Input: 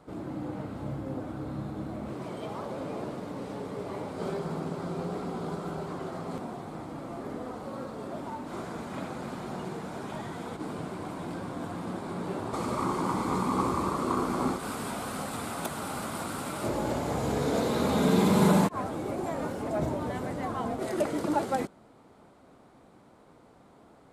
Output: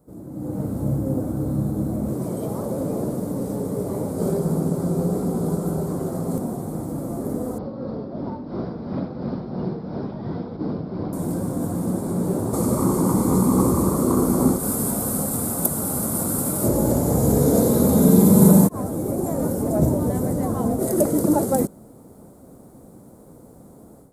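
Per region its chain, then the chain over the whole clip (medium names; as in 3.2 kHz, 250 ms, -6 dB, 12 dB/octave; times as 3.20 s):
7.58–11.13 s: steep low-pass 5.2 kHz 96 dB/octave + tremolo 2.9 Hz, depth 52%
whole clip: FFT filter 210 Hz 0 dB, 1.5 kHz -16 dB, 2.8 kHz -23 dB, 12 kHz +11 dB; level rider gain up to 13.5 dB; peaking EQ 520 Hz +4.5 dB 0.48 oct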